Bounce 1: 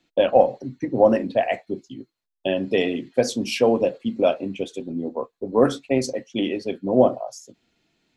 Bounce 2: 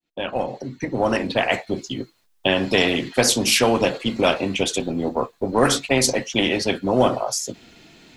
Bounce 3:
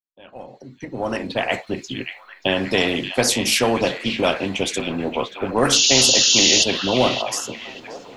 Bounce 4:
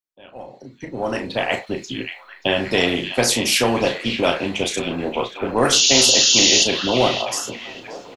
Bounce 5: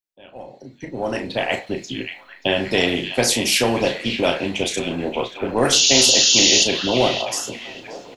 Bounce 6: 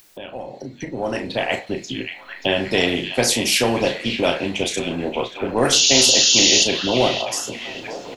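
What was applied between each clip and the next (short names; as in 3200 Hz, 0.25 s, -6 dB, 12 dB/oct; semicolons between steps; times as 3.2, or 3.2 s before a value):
opening faded in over 2.10 s; spectral compressor 2:1
opening faded in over 1.60 s; painted sound noise, 5.72–6.64, 2600–7100 Hz -15 dBFS; delay with a stepping band-pass 0.581 s, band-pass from 2700 Hz, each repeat -0.7 oct, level -6 dB; gain -1 dB
doubler 34 ms -7 dB
bell 1200 Hz -5 dB 0.6 oct; reverb, pre-delay 3 ms, DRR 19.5 dB
upward compressor, threshold -24 dBFS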